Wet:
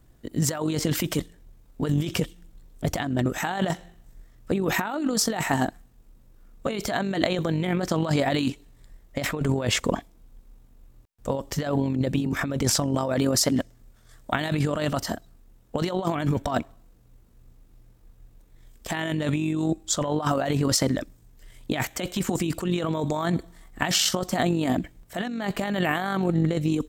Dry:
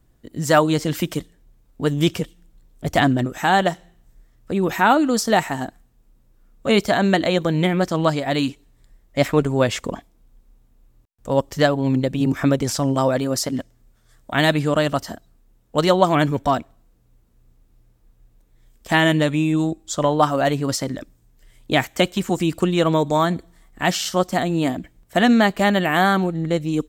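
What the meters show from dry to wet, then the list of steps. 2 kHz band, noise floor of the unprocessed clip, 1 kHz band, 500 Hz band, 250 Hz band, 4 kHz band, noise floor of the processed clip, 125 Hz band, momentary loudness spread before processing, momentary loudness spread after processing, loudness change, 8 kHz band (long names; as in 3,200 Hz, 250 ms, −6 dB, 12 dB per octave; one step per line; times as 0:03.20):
−7.5 dB, −58 dBFS, −9.5 dB, −8.0 dB, −5.5 dB, −3.5 dB, −55 dBFS, −3.5 dB, 12 LU, 9 LU, −6.0 dB, +2.0 dB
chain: amplitude modulation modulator 47 Hz, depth 20%
compressor whose output falls as the input rises −25 dBFS, ratio −1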